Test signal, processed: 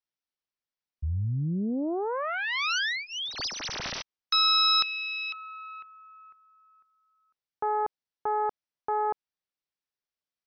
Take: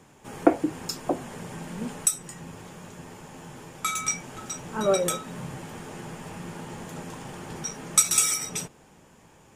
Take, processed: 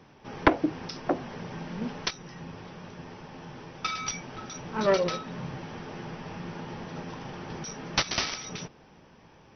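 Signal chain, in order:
phase distortion by the signal itself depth 0.75 ms
linear-phase brick-wall low-pass 6,100 Hz

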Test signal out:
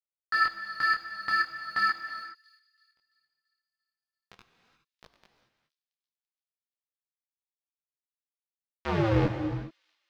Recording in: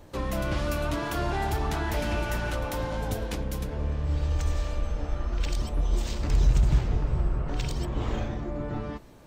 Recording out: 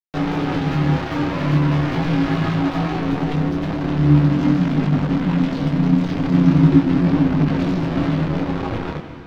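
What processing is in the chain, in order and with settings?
parametric band 60 Hz +8.5 dB 1.2 octaves
in parallel at +1 dB: downward compressor 6 to 1, threshold −28 dBFS
on the sum: bit reduction 4 bits
ring modulation 220 Hz
high-frequency loss of the air 250 metres
on a send: delay with a high-pass on its return 338 ms, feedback 48%, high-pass 3,900 Hz, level −20 dB
on the sum: reverb whose tail is shaped and stops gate 440 ms flat, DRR 7.5 dB
micro pitch shift up and down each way 14 cents
level +6 dB

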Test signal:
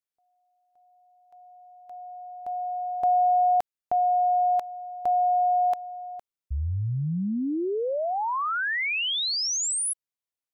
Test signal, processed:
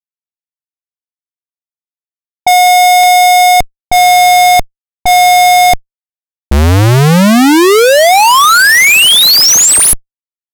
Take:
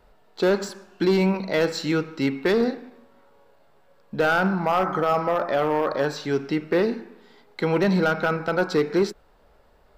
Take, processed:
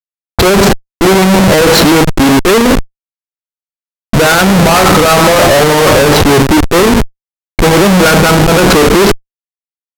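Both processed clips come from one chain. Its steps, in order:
comparator with hysteresis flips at −33 dBFS
low-pass that shuts in the quiet parts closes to 310 Hz, open at −29.5 dBFS
boost into a limiter +24.5 dB
level −1.5 dB

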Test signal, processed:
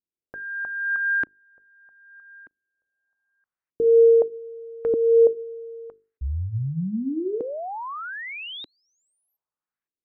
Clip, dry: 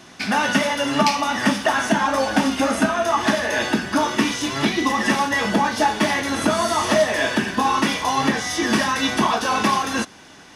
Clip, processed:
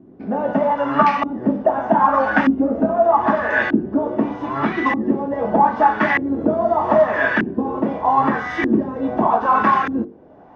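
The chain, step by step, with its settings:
harmonic generator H 3 −27 dB, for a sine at −2.5 dBFS
mains-hum notches 50/100/150/200/250/300/350/400/450 Hz
auto-filter low-pass saw up 0.81 Hz 300–1,900 Hz
level +1.5 dB

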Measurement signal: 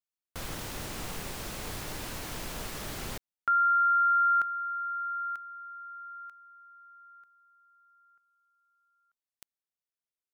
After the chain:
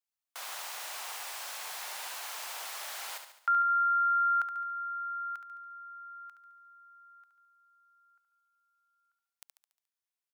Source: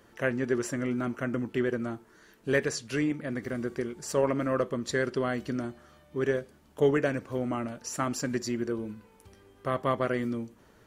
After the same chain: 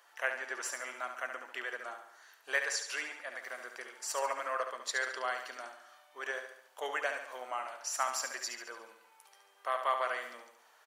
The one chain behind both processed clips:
Chebyshev high-pass filter 760 Hz, order 3
on a send: repeating echo 71 ms, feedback 50%, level −7.5 dB

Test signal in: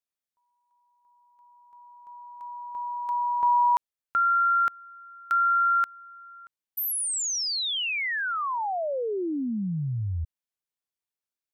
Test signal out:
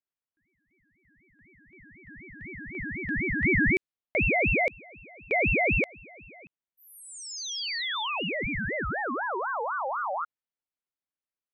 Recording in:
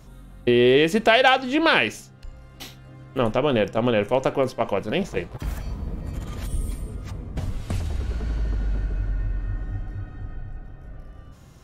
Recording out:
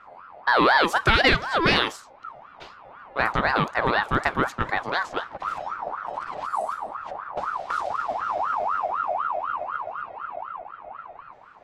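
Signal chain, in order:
low-pass that shuts in the quiet parts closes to 2,100 Hz, open at −17 dBFS
ring modulator whose carrier an LFO sweeps 1,000 Hz, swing 35%, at 4 Hz
level +1 dB

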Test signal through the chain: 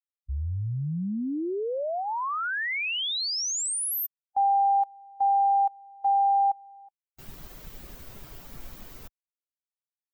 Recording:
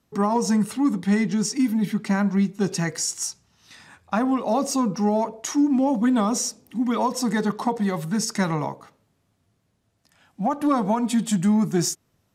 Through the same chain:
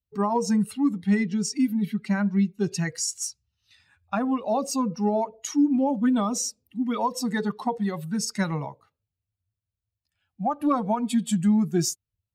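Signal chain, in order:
spectral dynamics exaggerated over time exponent 1.5

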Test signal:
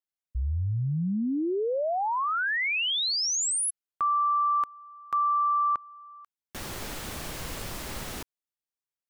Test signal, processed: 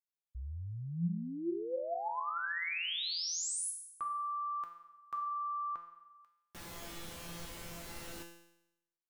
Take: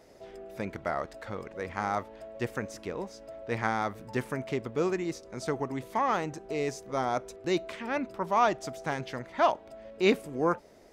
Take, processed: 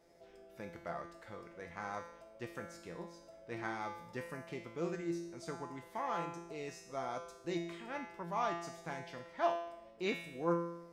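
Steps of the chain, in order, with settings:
tuned comb filter 170 Hz, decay 0.83 s, harmonics all, mix 90%
level +4.5 dB

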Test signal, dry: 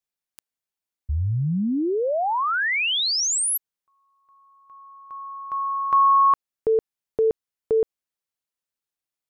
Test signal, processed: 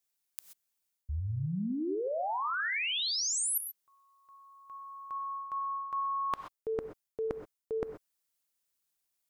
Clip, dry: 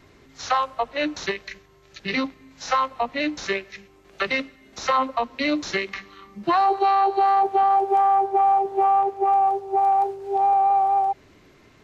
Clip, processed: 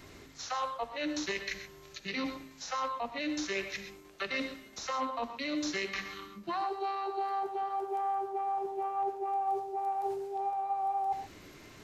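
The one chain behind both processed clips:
high-shelf EQ 4,800 Hz +9.5 dB
reversed playback
downward compressor 5 to 1, threshold −34 dBFS
reversed playback
reverb whose tail is shaped and stops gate 150 ms rising, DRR 8 dB

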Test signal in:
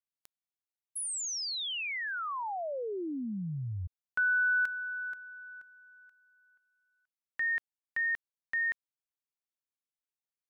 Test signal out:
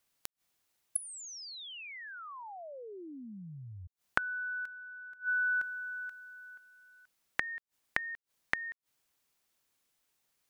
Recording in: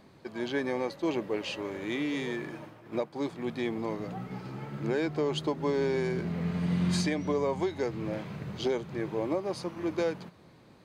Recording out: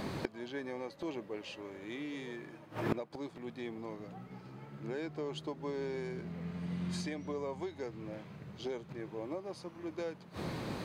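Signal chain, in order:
gate with flip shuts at −35 dBFS, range −27 dB
level +17 dB

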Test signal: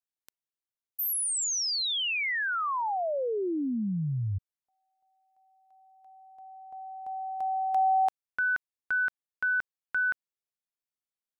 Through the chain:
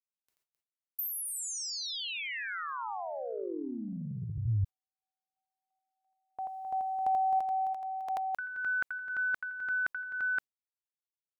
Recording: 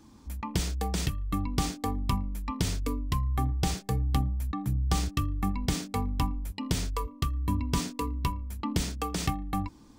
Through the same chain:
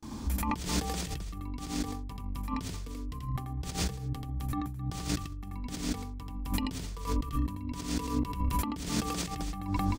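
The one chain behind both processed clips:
noise gate with hold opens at −48 dBFS, hold 19 ms, range −35 dB
loudspeakers that aren't time-aligned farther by 29 metres −2 dB, 90 metres −7 dB
compressor whose output falls as the input rises −38 dBFS, ratio −1
level +3 dB

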